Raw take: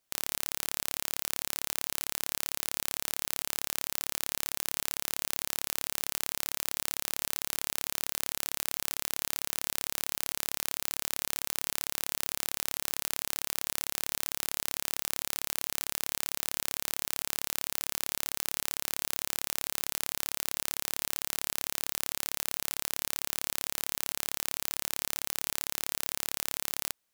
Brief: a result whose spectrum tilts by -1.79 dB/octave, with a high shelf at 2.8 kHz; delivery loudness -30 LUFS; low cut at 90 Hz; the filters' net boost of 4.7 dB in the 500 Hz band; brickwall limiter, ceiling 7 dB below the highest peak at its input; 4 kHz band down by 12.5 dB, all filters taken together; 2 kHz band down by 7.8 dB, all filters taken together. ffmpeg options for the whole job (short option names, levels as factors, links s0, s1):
-af "highpass=90,equalizer=f=500:t=o:g=6.5,equalizer=f=2000:t=o:g=-5,highshelf=f=2800:g=-7,equalizer=f=4000:t=o:g=-9,volume=6.31,alimiter=limit=0.708:level=0:latency=1"